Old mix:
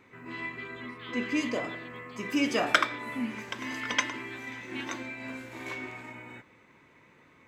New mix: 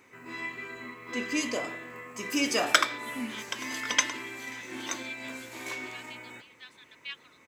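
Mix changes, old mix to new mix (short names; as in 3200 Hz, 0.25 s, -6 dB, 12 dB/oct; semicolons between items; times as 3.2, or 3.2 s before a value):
speech: entry +2.30 s; master: add tone controls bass -6 dB, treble +11 dB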